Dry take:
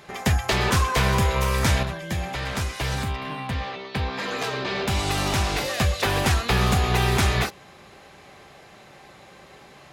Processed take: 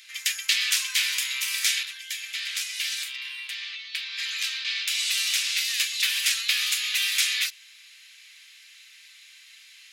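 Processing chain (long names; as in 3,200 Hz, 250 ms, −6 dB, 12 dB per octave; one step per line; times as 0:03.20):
inverse Chebyshev high-pass filter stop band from 680 Hz, stop band 60 dB
level +5.5 dB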